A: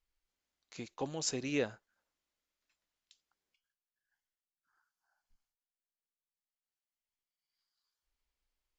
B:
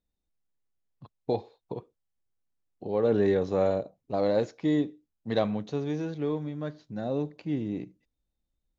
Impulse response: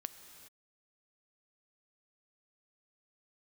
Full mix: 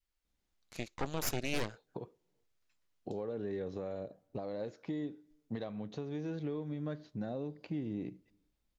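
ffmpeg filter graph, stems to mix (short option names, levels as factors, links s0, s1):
-filter_complex "[0:a]aeval=exprs='0.112*(cos(1*acos(clip(val(0)/0.112,-1,1)))-cos(1*PI/2))+0.0398*(cos(8*acos(clip(val(0)/0.112,-1,1)))-cos(8*PI/2))':c=same,volume=0.944[s0];[1:a]highshelf=f=7000:g=-8.5,acompressor=threshold=0.0178:ratio=5,alimiter=level_in=1.88:limit=0.0631:level=0:latency=1:release=425,volume=0.531,adelay=250,volume=1.06,asplit=2[s1][s2];[s2]volume=0.0841[s3];[2:a]atrim=start_sample=2205[s4];[s3][s4]afir=irnorm=-1:irlink=0[s5];[s0][s1][s5]amix=inputs=3:normalize=0,adynamicequalizer=threshold=0.00251:dfrequency=900:dqfactor=1.5:tfrequency=900:tqfactor=1.5:attack=5:release=100:ratio=0.375:range=3:mode=cutabove:tftype=bell,alimiter=limit=0.0708:level=0:latency=1:release=145"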